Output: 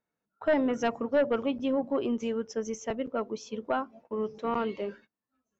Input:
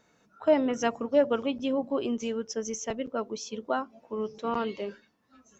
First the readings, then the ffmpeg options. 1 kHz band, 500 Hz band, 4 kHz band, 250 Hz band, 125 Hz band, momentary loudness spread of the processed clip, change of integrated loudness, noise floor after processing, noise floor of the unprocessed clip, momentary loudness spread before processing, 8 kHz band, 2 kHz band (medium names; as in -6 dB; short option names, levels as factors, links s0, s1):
-0.5 dB, -1.0 dB, -4.0 dB, 0.0 dB, +0.5 dB, 9 LU, -1.0 dB, under -85 dBFS, -67 dBFS, 11 LU, no reading, +1.5 dB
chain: -filter_complex "[0:a]agate=range=0.0794:threshold=0.00251:ratio=16:detection=peak,acrossover=split=2700[s0][s1];[s0]aeval=exprs='0.282*sin(PI/2*1.78*val(0)/0.282)':c=same[s2];[s2][s1]amix=inputs=2:normalize=0,volume=0.398"